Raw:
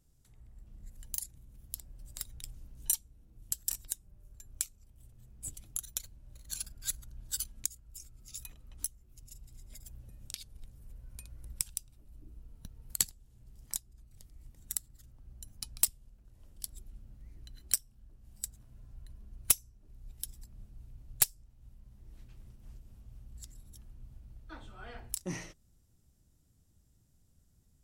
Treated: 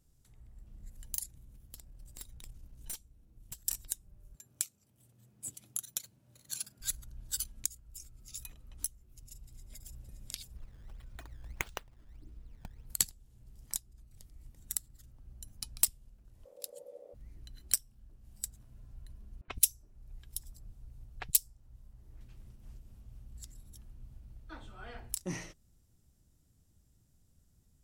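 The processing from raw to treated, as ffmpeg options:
ffmpeg -i in.wav -filter_complex "[0:a]asettb=1/sr,asplit=3[link_01][link_02][link_03];[link_01]atrim=end=1.574[link_04];[link_02]atrim=start=1.57:end=3.65,asetpts=PTS-STARTPTS,afade=type=in:duration=0.004:curve=qsin,afade=type=out:start_time=2.076:duration=0.004:curve=qsin,aeval=exprs='(tanh(70.8*val(0)+0.55)-tanh(0.55))/70.8':channel_layout=same[link_05];[link_03]atrim=start=3.646[link_06];[link_04][link_05]acrossfade=duration=0.004:curve1=hsin:curve2=qsin[link_07];[link_07][link_06]acrossfade=duration=0.004:curve1=qsin:curve2=hsin,asettb=1/sr,asplit=3[link_08][link_09][link_10];[link_08]atrim=end=4.354[link_11];[link_09]atrim=start=4.35:end=6.81,asetpts=PTS-STARTPTS,afade=type=in:duration=0.004:curve=qsin,afade=type=out:start_time=2.456:duration=0.004:curve=qsin,highpass=frequency=120:width=0.5412,highpass=frequency=120:width=1.3066[link_12];[link_10]atrim=start=6.806[link_13];[link_11][link_12]acrossfade=duration=0.004:curve1=hsin:curve2=qsin[link_14];[link_14][link_13]acrossfade=duration=0.004:curve1=qsin:curve2=hsin,asplit=2[link_15][link_16];[link_16]afade=type=in:start_time=9.26:duration=0.01,afade=type=out:start_time=10.04:duration=0.01,aecho=0:1:570|1140|1710|2280:0.595662|0.208482|0.0729686|0.025539[link_17];[link_15][link_17]amix=inputs=2:normalize=0,asplit=3[link_18][link_19][link_20];[link_18]afade=type=out:start_time=10.55:duration=0.02[link_21];[link_19]acrusher=samples=15:mix=1:aa=0.000001:lfo=1:lforange=24:lforate=1.6,afade=type=in:start_time=10.55:duration=0.02,afade=type=out:start_time=12.85:duration=0.02[link_22];[link_20]afade=type=in:start_time=12.85:duration=0.02[link_23];[link_21][link_22][link_23]amix=inputs=3:normalize=0,asplit=3[link_24][link_25][link_26];[link_24]afade=type=out:start_time=16.44:duration=0.02[link_27];[link_25]aeval=exprs='val(0)*sin(2*PI*530*n/s)':channel_layout=same,afade=type=in:start_time=16.44:duration=0.02,afade=type=out:start_time=17.13:duration=0.02[link_28];[link_26]afade=type=in:start_time=17.13:duration=0.02[link_29];[link_27][link_28][link_29]amix=inputs=3:normalize=0,asettb=1/sr,asplit=3[link_30][link_31][link_32];[link_30]atrim=end=19.414[link_33];[link_31]atrim=start=19.41:end=22.21,asetpts=PTS-STARTPTS,afade=type=in:duration=0.004:curve=qsin,afade=type=out:start_time=2.796:duration=0.004:curve=qsin,acrossover=split=240|2600[link_34][link_35][link_36];[link_34]adelay=70[link_37];[link_36]adelay=130[link_38];[link_37][link_35][link_38]amix=inputs=3:normalize=0,atrim=end_sample=123480[link_39];[link_32]atrim=start=22.206[link_40];[link_33][link_39]acrossfade=duration=0.004:curve1=hsin:curve2=qsin[link_41];[link_41][link_40]acrossfade=duration=0.004:curve1=qsin:curve2=hsin" out.wav

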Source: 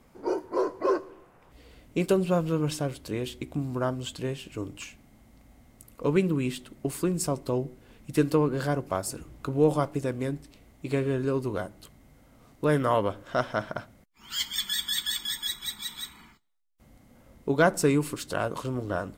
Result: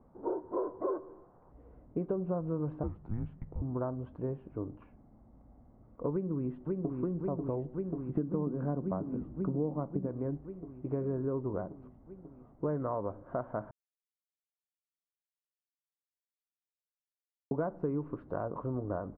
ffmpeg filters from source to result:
ffmpeg -i in.wav -filter_complex "[0:a]asettb=1/sr,asplit=3[link_01][link_02][link_03];[link_01]atrim=end=2.834[link_04];[link_02]atrim=start=2.83:end=3.62,asetpts=PTS-STARTPTS,afade=type=in:duration=0.004:curve=qsin,afade=type=out:start_time=0.786:duration=0.004:curve=qsin,afreqshift=-220[link_05];[link_03]atrim=start=3.616[link_06];[link_04][link_05]acrossfade=duration=0.004:curve1=hsin:curve2=qsin[link_07];[link_07][link_06]acrossfade=duration=0.004:curve1=qsin:curve2=hsin,asplit=2[link_08][link_09];[link_09]afade=type=in:start_time=6.12:duration=0.01,afade=type=out:start_time=7.02:duration=0.01,aecho=0:1:540|1080|1620|2160|2700|3240|3780|4320|4860|5400|5940|6480:0.562341|0.449873|0.359898|0.287919|0.230335|0.184268|0.147414|0.117932|0.0943452|0.0754762|0.0603809|0.0483048[link_10];[link_08][link_10]amix=inputs=2:normalize=0,asettb=1/sr,asplit=3[link_11][link_12][link_13];[link_11]atrim=end=8.154[link_14];[link_12]atrim=start=8.15:end=10.07,asetpts=PTS-STARTPTS,afade=type=in:duration=0.004:curve=qsin,afade=type=out:start_time=1.916:duration=0.004:curve=qsin,equalizer=frequency=210:width=1.5:gain=11.5[link_15];[link_13]atrim=start=10.066[link_16];[link_14][link_15]acrossfade=duration=0.004:curve1=hsin:curve2=qsin[link_17];[link_17][link_16]acrossfade=duration=0.004:curve1=qsin:curve2=hsin,asplit=3[link_18][link_19][link_20];[link_18]atrim=end=13.71,asetpts=PTS-STARTPTS,afade=type=out:start_time=13.706:duration=0.004:curve=hsin[link_21];[link_19]atrim=start=13.71:end=17.51,asetpts=PTS-STARTPTS,volume=0[link_22];[link_20]atrim=start=17.51,asetpts=PTS-STARTPTS,afade=type=in:duration=0.004:curve=hsin[link_23];[link_21][link_22][link_23]concat=n=3:v=0:a=1,acompressor=threshold=-27dB:ratio=6,lowpass=frequency=1100:width=0.5412,lowpass=frequency=1100:width=1.3066,volume=-2.5dB" out.wav

